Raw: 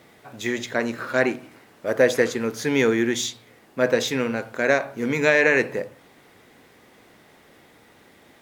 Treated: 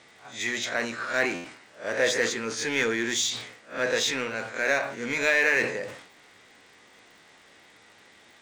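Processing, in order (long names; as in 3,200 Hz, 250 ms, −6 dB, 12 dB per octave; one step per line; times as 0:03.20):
peak hold with a rise ahead of every peak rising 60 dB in 0.30 s
Butterworth low-pass 8,900 Hz 48 dB per octave
tilt shelving filter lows −6 dB, about 840 Hz
surface crackle 70 per second −44 dBFS
in parallel at −4.5 dB: hard clipping −22.5 dBFS, distortion −4 dB
on the sum: flanger 0.35 Hz, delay 9.1 ms, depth 1.7 ms, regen −68%
buffer that repeats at 0:01.34, samples 512, times 8
level that may fall only so fast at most 82 dB per second
level −4 dB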